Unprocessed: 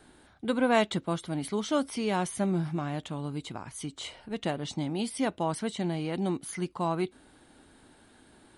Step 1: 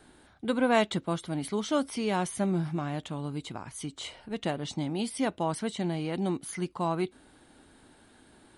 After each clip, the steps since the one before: nothing audible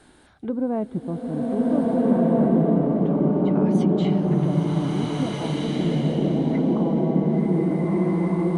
treble ducked by the level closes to 440 Hz, closed at -29 dBFS; bloom reverb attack 1.76 s, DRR -8.5 dB; gain +3.5 dB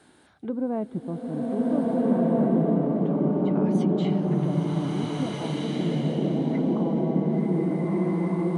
HPF 97 Hz; gain -3 dB

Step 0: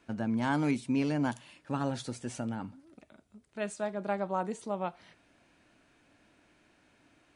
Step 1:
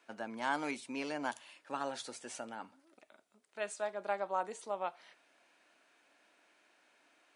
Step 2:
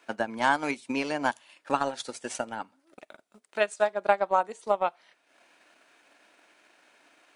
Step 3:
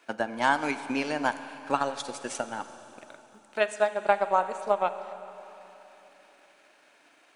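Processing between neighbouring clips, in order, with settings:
HPF 530 Hz 12 dB/oct; gain -1 dB
transient shaper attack +7 dB, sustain -9 dB; gain +8 dB
Schroeder reverb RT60 3.5 s, combs from 33 ms, DRR 11 dB

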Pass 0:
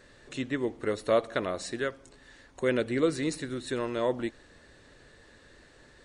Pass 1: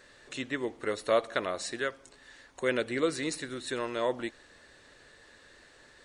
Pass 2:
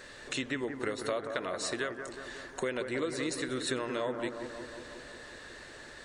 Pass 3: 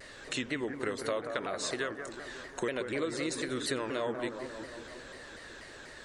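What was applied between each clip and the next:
low shelf 400 Hz -10 dB; gain +2 dB
compressor 6:1, threshold -39 dBFS, peak gain reduction 18 dB; analogue delay 0.18 s, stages 2048, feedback 68%, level -7 dB; gain +7.5 dB
shaped vibrato saw down 4.1 Hz, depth 160 cents

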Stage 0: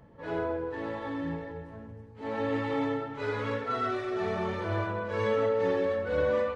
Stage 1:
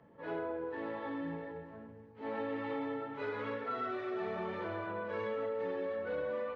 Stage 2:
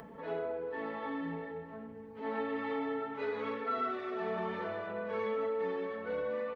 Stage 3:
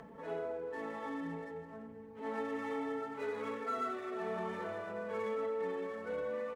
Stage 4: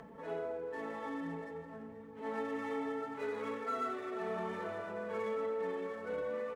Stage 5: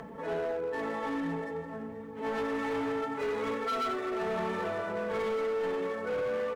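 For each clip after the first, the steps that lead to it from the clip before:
compressor, threshold -30 dBFS, peak gain reduction 7 dB; three-band isolator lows -14 dB, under 150 Hz, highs -17 dB, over 4000 Hz; gain -3.5 dB
comb 4.5 ms, depth 59%; upward compressor, threshold -41 dBFS
median filter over 9 samples; gain -2.5 dB
warbling echo 0.487 s, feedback 57%, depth 64 cents, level -18 dB
hard clip -36.5 dBFS, distortion -13 dB; gain +8 dB

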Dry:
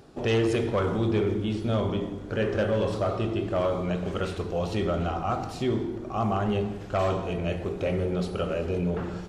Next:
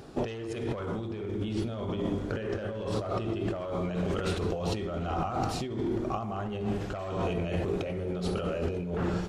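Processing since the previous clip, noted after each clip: negative-ratio compressor -32 dBFS, ratio -1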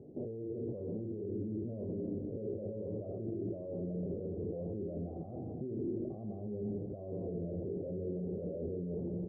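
HPF 100 Hz 12 dB/oct; limiter -26 dBFS, peak gain reduction 8 dB; steep low-pass 560 Hz 36 dB/oct; gain -3.5 dB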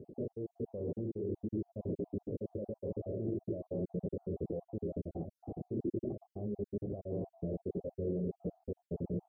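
random spectral dropouts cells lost 45%; gain +3 dB

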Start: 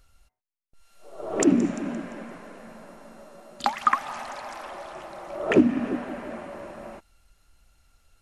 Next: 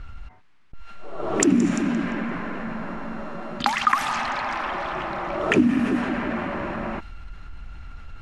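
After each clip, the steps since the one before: low-pass opened by the level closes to 1800 Hz, open at -20.5 dBFS; bell 560 Hz -10.5 dB 1.2 oct; fast leveller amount 50%; gain +1.5 dB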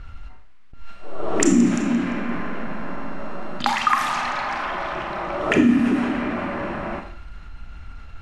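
Schroeder reverb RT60 0.57 s, combs from 26 ms, DRR 4.5 dB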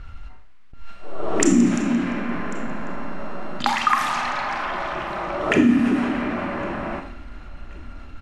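feedback echo 1.095 s, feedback 39%, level -24 dB

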